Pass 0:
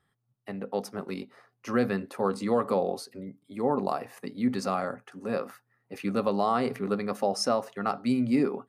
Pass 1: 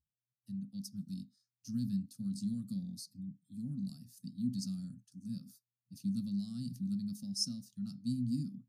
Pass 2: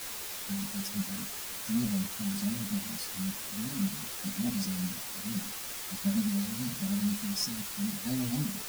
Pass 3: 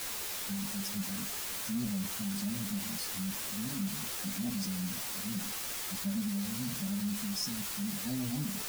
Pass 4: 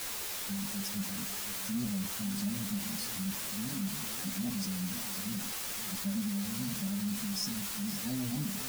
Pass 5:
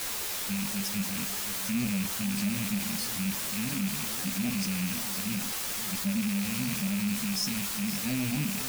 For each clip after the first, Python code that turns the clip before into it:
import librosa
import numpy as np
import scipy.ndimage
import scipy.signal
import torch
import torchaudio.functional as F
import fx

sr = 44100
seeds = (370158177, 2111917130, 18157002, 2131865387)

y1 = scipy.signal.sosfilt(scipy.signal.ellip(3, 1.0, 40, [170.0, 4900.0], 'bandstop', fs=sr, output='sos'), x)
y1 = fx.noise_reduce_blind(y1, sr, reduce_db=20)
y1 = fx.graphic_eq_10(y1, sr, hz=(250, 500, 2000), db=(11, -6, 5))
y1 = F.gain(torch.from_numpy(y1), -3.5).numpy()
y2 = fx.cheby_harmonics(y1, sr, harmonics=(5,), levels_db=(-9,), full_scale_db=-20.5)
y2 = fx.quant_dither(y2, sr, seeds[0], bits=6, dither='triangular')
y2 = fx.ensemble(y2, sr)
y3 = fx.env_flatten(y2, sr, amount_pct=50)
y3 = F.gain(torch.from_numpy(y3), -6.0).numpy()
y4 = y3 + 10.0 ** (-13.0 / 20.0) * np.pad(y3, (int(517 * sr / 1000.0), 0))[:len(y3)]
y5 = fx.rattle_buzz(y4, sr, strikes_db=-42.0, level_db=-32.0)
y5 = F.gain(torch.from_numpy(y5), 4.5).numpy()